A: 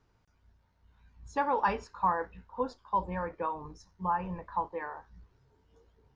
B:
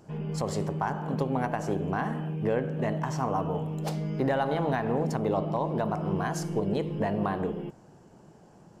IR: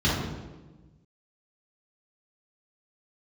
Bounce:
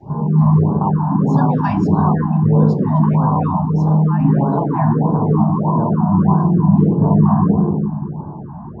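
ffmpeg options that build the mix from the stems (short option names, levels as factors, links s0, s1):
-filter_complex "[0:a]highshelf=f=2100:g=3,volume=1.33[s0];[1:a]lowpass=f=1000:t=q:w=6,adynamicequalizer=threshold=0.00794:dfrequency=200:dqfactor=2.4:tfrequency=200:tqfactor=2.4:attack=5:release=100:ratio=0.375:range=3:mode=boostabove:tftype=bell,acompressor=threshold=0.0158:ratio=2.5,volume=1.26,asplit=2[s1][s2];[s2]volume=0.596[s3];[2:a]atrim=start_sample=2205[s4];[s3][s4]afir=irnorm=-1:irlink=0[s5];[s0][s1][s5]amix=inputs=3:normalize=0,afftfilt=real='re*(1-between(b*sr/1024,410*pow(2400/410,0.5+0.5*sin(2*PI*1.6*pts/sr))/1.41,410*pow(2400/410,0.5+0.5*sin(2*PI*1.6*pts/sr))*1.41))':imag='im*(1-between(b*sr/1024,410*pow(2400/410,0.5+0.5*sin(2*PI*1.6*pts/sr))/1.41,410*pow(2400/410,0.5+0.5*sin(2*PI*1.6*pts/sr))*1.41))':win_size=1024:overlap=0.75"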